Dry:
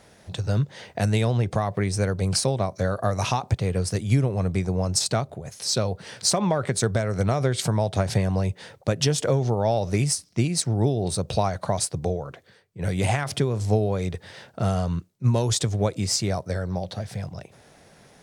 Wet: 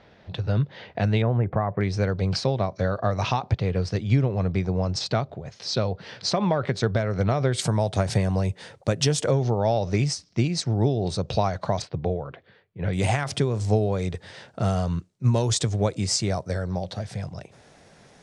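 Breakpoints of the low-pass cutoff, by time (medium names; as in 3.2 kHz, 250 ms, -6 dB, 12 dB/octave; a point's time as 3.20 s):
low-pass 24 dB/octave
4.1 kHz
from 1.22 s 1.9 kHz
from 1.81 s 4.9 kHz
from 7.53 s 10 kHz
from 9.31 s 6.2 kHz
from 11.82 s 3.6 kHz
from 12.93 s 9 kHz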